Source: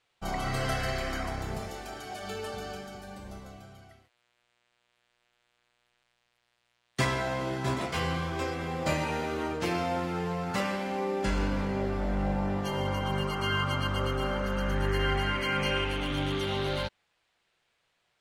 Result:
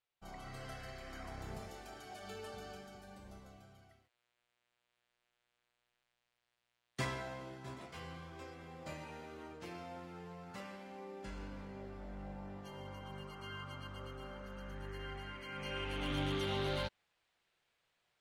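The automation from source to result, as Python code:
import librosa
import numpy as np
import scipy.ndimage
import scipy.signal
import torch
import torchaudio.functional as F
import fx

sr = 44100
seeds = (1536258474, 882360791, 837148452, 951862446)

y = fx.gain(x, sr, db=fx.line((1.0, -17.5), (1.47, -10.5), (7.06, -10.5), (7.6, -18.0), (15.47, -18.0), (16.09, -6.0)))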